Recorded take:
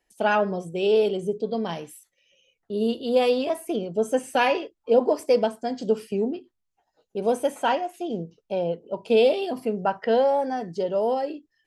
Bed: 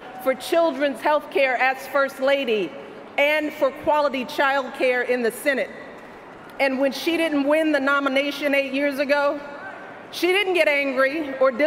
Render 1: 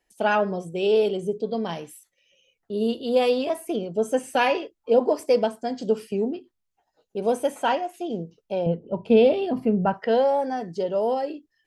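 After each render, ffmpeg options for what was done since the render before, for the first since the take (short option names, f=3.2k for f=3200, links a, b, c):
-filter_complex "[0:a]asettb=1/sr,asplit=3[a][b][c];[a]atrim=end=8.664[d];[b]atrim=start=8.66:end=9.94,asetpts=PTS-STARTPTS,afade=t=in:d=0.004:c=qsin,afade=t=out:st=1.276:d=0.004:c=qsin,bass=f=250:g=13,treble=f=4k:g=-12[e];[c]atrim=start=9.936[f];[d][e]acrossfade=d=0.004:c1=hsin:c2=qsin[g];[g][f]acrossfade=d=0.004:c1=qsin:c2=hsin"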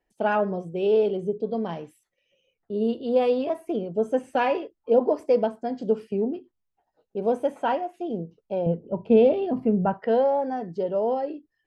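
-af "lowpass=f=1.2k:p=1"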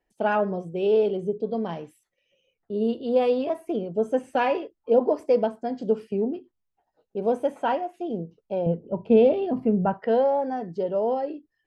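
-af anull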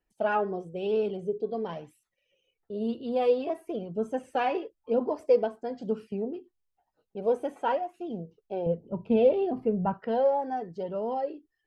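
-af "flanger=delay=0.7:depth=2:regen=32:speed=1:shape=sinusoidal"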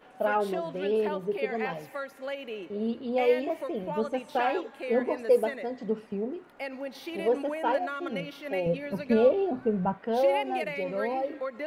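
-filter_complex "[1:a]volume=-16dB[a];[0:a][a]amix=inputs=2:normalize=0"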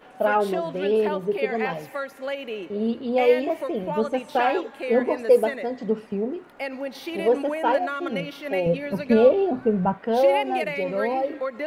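-af "volume=5.5dB"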